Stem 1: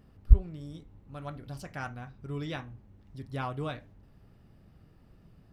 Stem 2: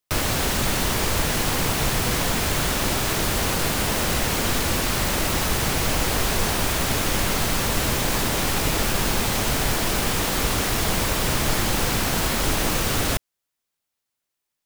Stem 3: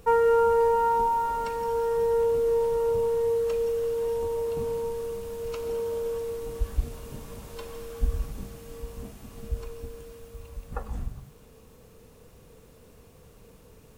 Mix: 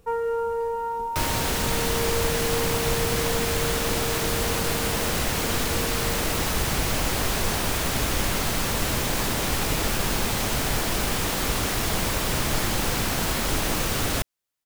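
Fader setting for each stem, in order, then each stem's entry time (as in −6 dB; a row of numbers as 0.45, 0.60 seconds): muted, −2.5 dB, −5.5 dB; muted, 1.05 s, 0.00 s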